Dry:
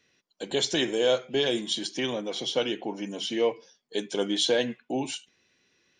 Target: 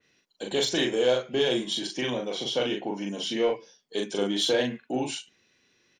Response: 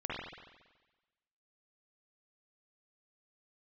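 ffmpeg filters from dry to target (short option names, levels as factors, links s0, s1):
-filter_complex "[0:a]asoftclip=type=tanh:threshold=0.178,asplit=2[s0][s1];[s1]adelay=40,volume=0.708[s2];[s0][s2]amix=inputs=2:normalize=0,adynamicequalizer=threshold=0.00891:dfrequency=3300:dqfactor=0.7:tfrequency=3300:tqfactor=0.7:attack=5:release=100:ratio=0.375:range=2:mode=cutabove:tftype=highshelf"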